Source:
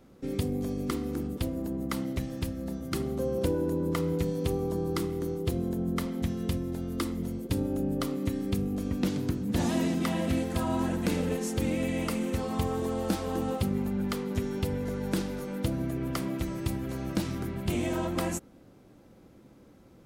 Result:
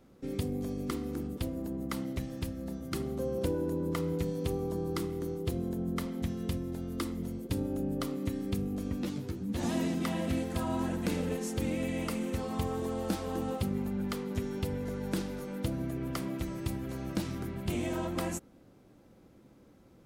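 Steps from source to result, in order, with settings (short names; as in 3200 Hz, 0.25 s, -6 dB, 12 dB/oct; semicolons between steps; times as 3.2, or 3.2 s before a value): 9.03–9.63 ensemble effect; gain -3.5 dB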